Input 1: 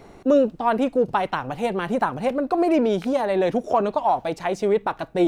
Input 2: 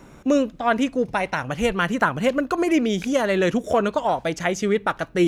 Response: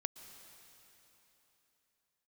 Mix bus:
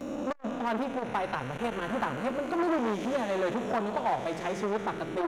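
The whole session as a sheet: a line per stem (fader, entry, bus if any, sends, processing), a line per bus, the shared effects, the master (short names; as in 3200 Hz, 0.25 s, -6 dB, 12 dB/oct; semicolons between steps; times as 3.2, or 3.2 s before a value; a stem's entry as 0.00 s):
-7.5 dB, 0.00 s, send -20.5 dB, overloaded stage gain 14 dB
0.0 dB, 8.6 ms, send -11 dB, time blur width 0.47 s; requantised 12-bit, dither none; auto duck -12 dB, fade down 0.60 s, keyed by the first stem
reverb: on, RT60 3.6 s, pre-delay 0.108 s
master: core saturation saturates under 970 Hz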